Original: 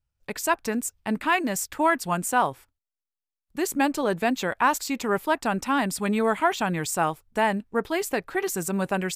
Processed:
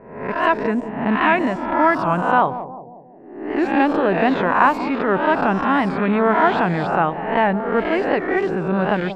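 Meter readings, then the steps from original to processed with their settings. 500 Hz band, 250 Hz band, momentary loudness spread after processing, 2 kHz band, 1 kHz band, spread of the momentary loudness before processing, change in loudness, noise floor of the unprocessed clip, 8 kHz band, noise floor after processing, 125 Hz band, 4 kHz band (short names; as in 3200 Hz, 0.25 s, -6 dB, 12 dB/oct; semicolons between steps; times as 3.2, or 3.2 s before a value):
+7.5 dB, +7.5 dB, 6 LU, +6.5 dB, +7.5 dB, 5 LU, +7.0 dB, under -85 dBFS, under -20 dB, -39 dBFS, +7.5 dB, +0.5 dB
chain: spectral swells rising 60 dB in 0.82 s; air absorption 420 m; analogue delay 0.18 s, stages 1024, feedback 54%, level -11 dB; low-pass opened by the level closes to 890 Hz, open at -18 dBFS; record warp 78 rpm, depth 100 cents; gain +6 dB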